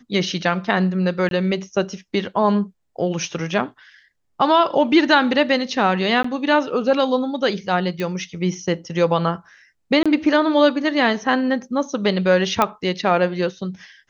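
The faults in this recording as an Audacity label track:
1.290000	1.310000	gap 22 ms
6.230000	6.240000	gap 14 ms
8.000000	8.000000	pop -14 dBFS
10.030000	10.060000	gap 26 ms
12.620000	12.620000	pop -3 dBFS

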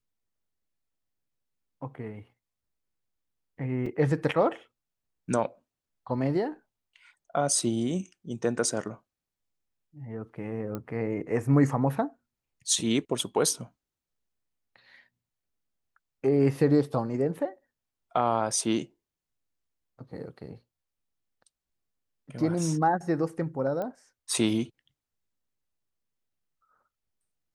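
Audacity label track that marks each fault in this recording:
3.860000	3.860000	gap 3.8 ms
10.750000	10.750000	pop -21 dBFS
23.820000	23.820000	pop -22 dBFS

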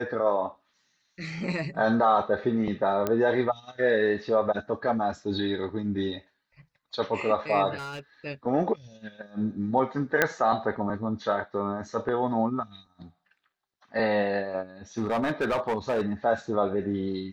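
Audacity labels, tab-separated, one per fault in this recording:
3.070000	3.070000	pop -13 dBFS
7.770000	8.000000	clipped -33.5 dBFS
10.220000	10.220000	pop -6 dBFS
14.980000	16.120000	clipped -22 dBFS

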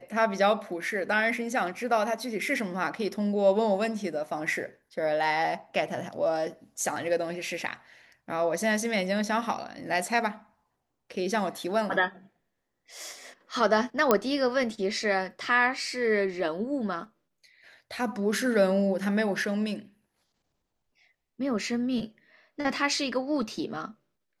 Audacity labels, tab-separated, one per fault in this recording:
14.110000	14.110000	pop -7 dBFS

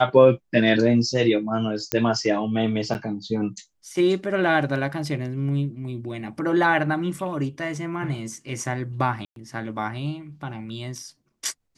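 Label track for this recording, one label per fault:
1.920000	1.920000	pop -5 dBFS
2.940000	2.950000	gap 9.6 ms
9.250000	9.360000	gap 0.112 s

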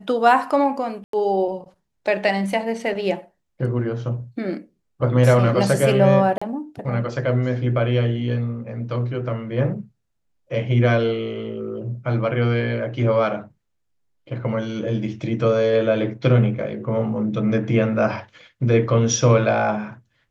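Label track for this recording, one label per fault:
1.040000	1.130000	gap 93 ms
6.380000	6.420000	gap 35 ms

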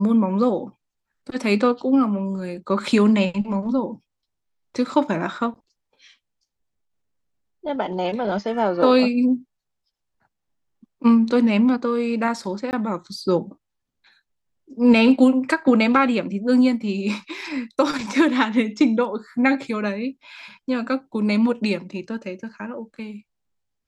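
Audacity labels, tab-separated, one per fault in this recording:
12.710000	12.730000	gap 19 ms

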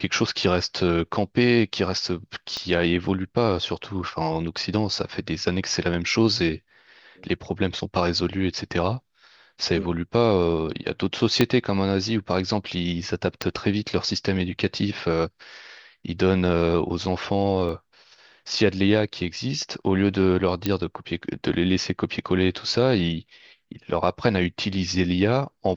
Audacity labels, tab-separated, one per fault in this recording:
2.570000	2.570000	pop -16 dBFS
11.410000	11.410000	pop -4 dBFS
13.420000	13.420000	pop -11 dBFS
17.690000	17.690000	gap 2.5 ms
20.660000	20.660000	pop -9 dBFS

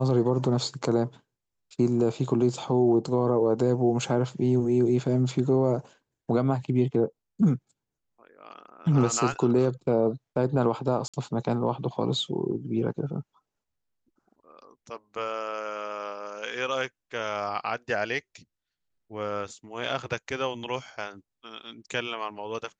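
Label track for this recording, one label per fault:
11.080000	11.140000	gap 56 ms

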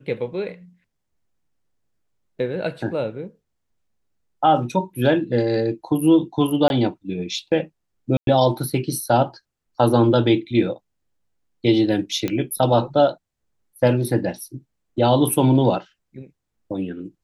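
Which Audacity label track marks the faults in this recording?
6.680000	6.700000	gap 21 ms
8.170000	8.270000	gap 0.102 s
12.280000	12.280000	pop -11 dBFS

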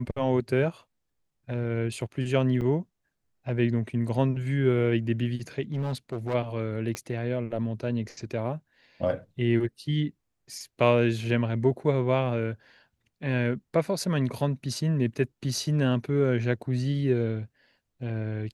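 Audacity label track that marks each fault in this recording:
2.610000	2.610000	gap 3.4 ms
5.730000	6.350000	clipped -25.5 dBFS
6.950000	6.950000	pop -18 dBFS

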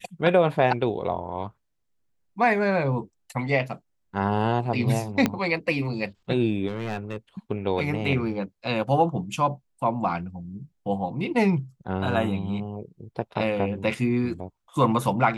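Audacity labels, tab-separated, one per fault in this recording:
5.260000	5.260000	pop -8 dBFS
6.680000	7.160000	clipped -24.5 dBFS

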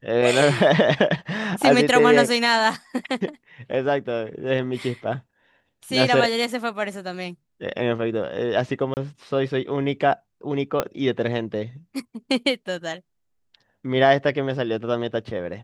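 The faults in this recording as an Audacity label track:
8.940000	8.970000	gap 29 ms
10.800000	10.800000	pop -7 dBFS

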